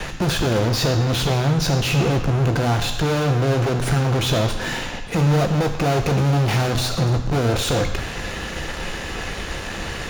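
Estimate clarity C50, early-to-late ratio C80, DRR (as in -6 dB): 8.0 dB, 9.5 dB, 5.5 dB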